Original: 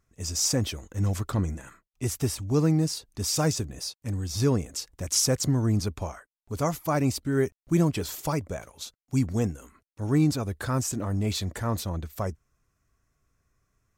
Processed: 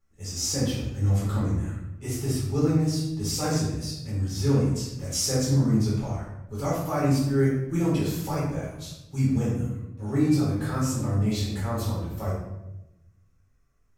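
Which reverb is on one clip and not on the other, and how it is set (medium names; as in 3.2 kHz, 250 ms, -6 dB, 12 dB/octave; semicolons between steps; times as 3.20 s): simulated room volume 320 m³, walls mixed, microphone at 4.1 m; trim -11.5 dB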